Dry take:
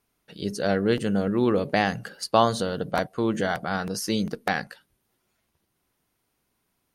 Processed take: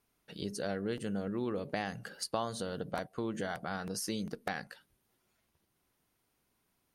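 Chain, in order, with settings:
dynamic equaliser 9,300 Hz, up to +5 dB, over −51 dBFS, Q 1.7
downward compressor 2.5 to 1, threshold −34 dBFS, peak gain reduction 13.5 dB
level −3 dB

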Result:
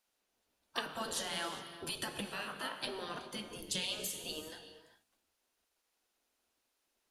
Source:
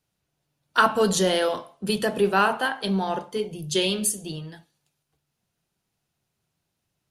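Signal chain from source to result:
downward compressor 6 to 1, threshold −28 dBFS, peak gain reduction 14 dB
gate on every frequency bin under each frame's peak −10 dB weak
reverb whose tail is shaped and stops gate 430 ms flat, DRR 8.5 dB
level −1 dB

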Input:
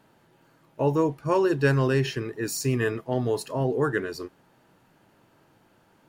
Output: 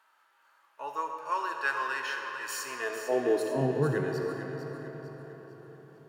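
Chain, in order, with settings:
high-pass filter 100 Hz
feedback echo with a high-pass in the loop 450 ms, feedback 40%, level −9 dB
high-pass filter sweep 1,200 Hz → 130 Hz, 0:02.60–0:03.79
convolution reverb RT60 5.1 s, pre-delay 25 ms, DRR 4.5 dB
harmonic and percussive parts rebalanced percussive −6 dB
level −3.5 dB

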